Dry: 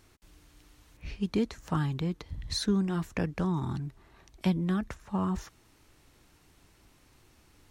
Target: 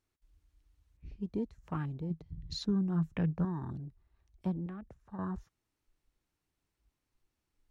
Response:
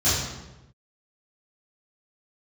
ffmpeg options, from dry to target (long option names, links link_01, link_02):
-filter_complex "[0:a]afwtdn=0.00891,asettb=1/sr,asplit=3[link_01][link_02][link_03];[link_01]atrim=end=2.104[link_04];[link_02]atrim=start=2.1:end=3.45,asetpts=PTS-STARTPTS,afade=type=in:duration=0.004:curve=qsin,afade=type=out:start_time=1.346:duration=0.004:curve=qsin,equalizer=frequency=160:width=3.9:gain=12[link_05];[link_03]atrim=start=3.446[link_06];[link_04][link_05]acrossfade=duration=0.004:curve1=hsin:curve2=qsin[link_07];[link_07][link_06]acrossfade=duration=0.004:curve1=qsin:curve2=hsin,asettb=1/sr,asplit=3[link_08][link_09][link_10];[link_08]atrim=end=4.664[link_11];[link_09]atrim=start=4.66:end=5.19,asetpts=PTS-STARTPTS,afade=type=in:duration=0.004:curve=qsin,afade=type=out:start_time=0.526:duration=0.004:curve=qsin,acrossover=split=85|500|1300[link_12][link_13][link_14][link_15];[link_12]acompressor=threshold=-54dB:ratio=4[link_16];[link_13]acompressor=threshold=-37dB:ratio=4[link_17];[link_14]acompressor=threshold=-47dB:ratio=4[link_18];[link_15]acompressor=threshold=-57dB:ratio=4[link_19];[link_16][link_17][link_18][link_19]amix=inputs=4:normalize=0[link_20];[link_10]atrim=start=5.186[link_21];[link_11][link_20]acrossfade=duration=0.004:curve1=hsin:curve2=qsin[link_22];[link_22][link_21]acrossfade=duration=0.004:curve1=qsin:curve2=hsin,volume=-7dB"